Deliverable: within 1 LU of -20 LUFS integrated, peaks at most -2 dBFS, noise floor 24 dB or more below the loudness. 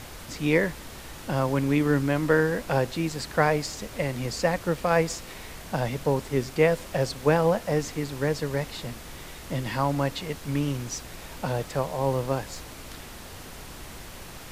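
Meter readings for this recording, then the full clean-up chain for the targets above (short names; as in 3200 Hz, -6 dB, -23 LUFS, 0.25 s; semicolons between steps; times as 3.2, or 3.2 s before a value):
noise floor -42 dBFS; noise floor target -51 dBFS; loudness -26.5 LUFS; peak -6.5 dBFS; loudness target -20.0 LUFS
-> noise print and reduce 9 dB; gain +6.5 dB; limiter -2 dBFS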